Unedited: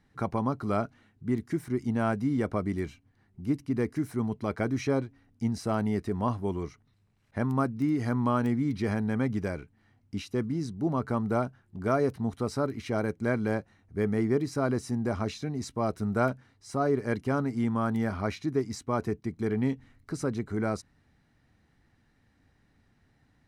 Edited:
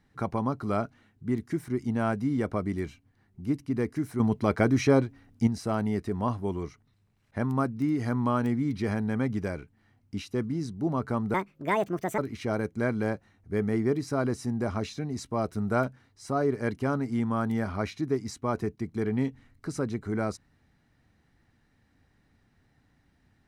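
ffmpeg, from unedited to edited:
-filter_complex "[0:a]asplit=5[s0][s1][s2][s3][s4];[s0]atrim=end=4.202[s5];[s1]atrim=start=4.198:end=5.472,asetpts=PTS-STARTPTS,volume=2[s6];[s2]atrim=start=5.468:end=11.344[s7];[s3]atrim=start=11.34:end=12.63,asetpts=PTS-STARTPTS,asetrate=67473,aresample=44100,atrim=end_sample=37182,asetpts=PTS-STARTPTS[s8];[s4]atrim=start=12.626[s9];[s5][s6]acrossfade=d=0.004:c1=hsin:c2=hsin[s10];[s10][s7]acrossfade=d=0.004:c1=hsin:c2=hsin[s11];[s11][s8]acrossfade=d=0.004:c1=hsin:c2=hsin[s12];[s12][s9]acrossfade=d=0.004:c1=hsin:c2=hsin"

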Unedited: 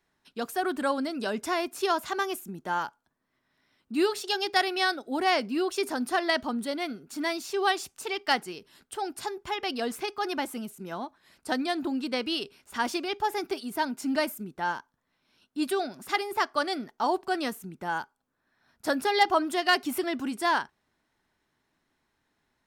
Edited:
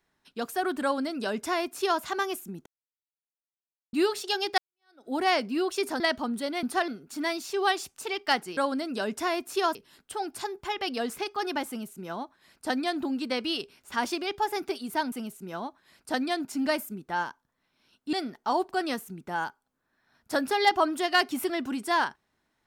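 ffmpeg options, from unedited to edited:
-filter_complex "[0:a]asplit=12[s0][s1][s2][s3][s4][s5][s6][s7][s8][s9][s10][s11];[s0]atrim=end=2.66,asetpts=PTS-STARTPTS,afade=t=out:st=2.656:d=0.004:c=hsin[s12];[s1]atrim=start=2.66:end=3.93,asetpts=PTS-STARTPTS,volume=0[s13];[s2]atrim=start=3.93:end=4.58,asetpts=PTS-STARTPTS,afade=t=in:d=0.004:c=hsin,afade=t=out:st=0.646:d=0.004:c=hsin[s14];[s3]atrim=start=4.58:end=6.002,asetpts=PTS-STARTPTS,afade=t=in:d=0.49:c=exp[s15];[s4]atrim=start=6.248:end=6.882[s16];[s5]atrim=start=5.998:end=6.252[s17];[s6]atrim=start=6.878:end=8.572[s18];[s7]atrim=start=0.828:end=2.012[s19];[s8]atrim=start=8.568:end=13.942[s20];[s9]atrim=start=10.498:end=11.832[s21];[s10]atrim=start=13.938:end=15.622[s22];[s11]atrim=start=16.668[s23];[s12][s13][s14][s15]concat=n=4:v=0:a=1[s24];[s24][s16]acrossfade=d=0.004:c1=hsin:c2=hsin[s25];[s25][s17]acrossfade=d=0.004:c1=hsin:c2=hsin[s26];[s26][s18]acrossfade=d=0.004:c1=hsin:c2=hsin[s27];[s27][s19]acrossfade=d=0.004:c1=hsin:c2=hsin[s28];[s28][s20]acrossfade=d=0.004:c1=hsin:c2=hsin[s29];[s29][s21]acrossfade=d=0.004:c1=hsin:c2=hsin[s30];[s30][s22]acrossfade=d=0.004:c1=hsin:c2=hsin[s31];[s31][s23]acrossfade=d=0.004:c1=hsin:c2=hsin"

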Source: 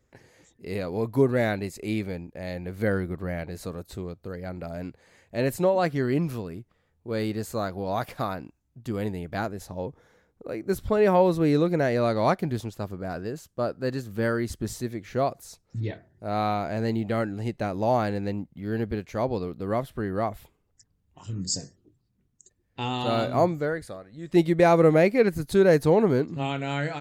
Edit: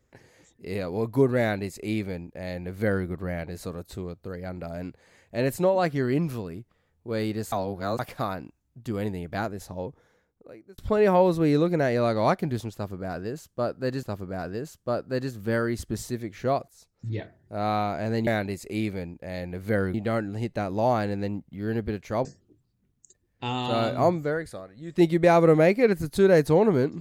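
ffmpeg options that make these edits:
-filter_complex "[0:a]asplit=9[s0][s1][s2][s3][s4][s5][s6][s7][s8];[s0]atrim=end=7.522[s9];[s1]atrim=start=7.518:end=7.992,asetpts=PTS-STARTPTS,areverse[s10];[s2]atrim=start=7.988:end=10.78,asetpts=PTS-STARTPTS,afade=t=out:st=1.712:d=1.08[s11];[s3]atrim=start=10.78:end=14.032,asetpts=PTS-STARTPTS,afade=t=in:d=0.004:c=hsin[s12];[s4]atrim=start=12.738:end=15.39,asetpts=PTS-STARTPTS,afade=t=out:st=2.648:d=0.004:c=hsin:silence=0.16788[s13];[s5]atrim=start=15.39:end=16.982,asetpts=PTS-STARTPTS,afade=t=in:d=0.53:silence=0.16788[s14];[s6]atrim=start=1.398:end=3.072[s15];[s7]atrim=start=16.978:end=19.292[s16];[s8]atrim=start=21.608[s17];[s9][s10]acrossfade=d=0.004:c1=hsin:c2=hsin[s18];[s11][s12]concat=n=2:v=0:a=1[s19];[s18][s19]acrossfade=d=0.004:c1=hsin:c2=hsin[s20];[s13][s14]concat=n=2:v=0:a=1[s21];[s20][s21]acrossfade=d=0.004:c1=hsin:c2=hsin[s22];[s22][s15]acrossfade=d=0.004:c1=hsin:c2=hsin[s23];[s23][s16]acrossfade=d=0.004:c1=hsin:c2=hsin[s24];[s24][s17]acrossfade=d=0.004:c1=hsin:c2=hsin"

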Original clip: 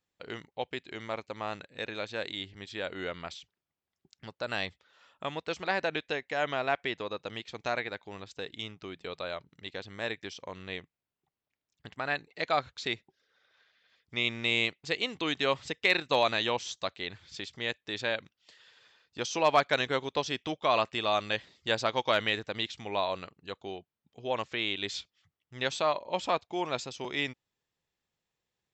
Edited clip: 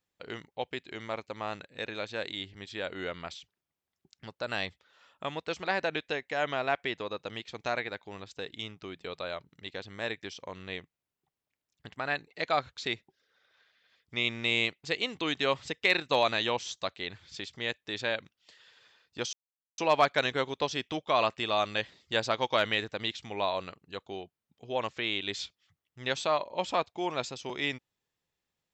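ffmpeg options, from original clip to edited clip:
-filter_complex "[0:a]asplit=2[s0][s1];[s0]atrim=end=19.33,asetpts=PTS-STARTPTS,afade=t=out:st=19.326:d=0.004:c=hsin,apad=pad_dur=0.45[s2];[s1]atrim=start=19.33,asetpts=PTS-STARTPTS,afade=t=in:d=0.004:c=hsin[s3];[s2][s3]concat=n=2:v=0:a=1"

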